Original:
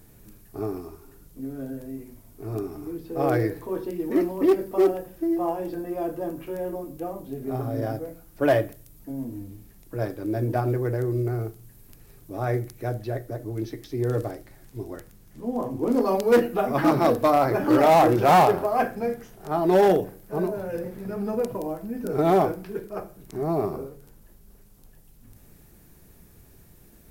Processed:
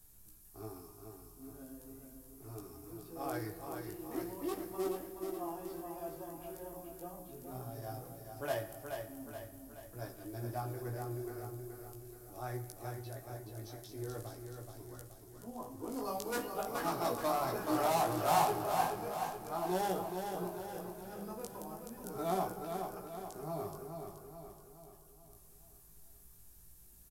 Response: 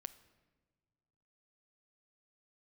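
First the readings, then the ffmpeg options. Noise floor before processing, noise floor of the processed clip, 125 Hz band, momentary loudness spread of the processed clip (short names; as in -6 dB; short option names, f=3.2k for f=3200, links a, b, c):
-53 dBFS, -59 dBFS, -15.0 dB, 20 LU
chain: -filter_complex "[1:a]atrim=start_sample=2205,asetrate=25578,aresample=44100[a];[0:a][a]afir=irnorm=-1:irlink=0,flanger=delay=16:depth=3.5:speed=0.4,equalizer=f=125:t=o:w=1:g=-7,equalizer=f=250:t=o:w=1:g=-8,equalizer=f=500:t=o:w=1:g=-9,equalizer=f=2k:t=o:w=1:g=-7,acrossover=split=290|5900[b][c][d];[d]acontrast=84[e];[b][c][e]amix=inputs=3:normalize=0,aecho=1:1:426|852|1278|1704|2130|2556:0.501|0.256|0.13|0.0665|0.0339|0.0173,volume=-3.5dB"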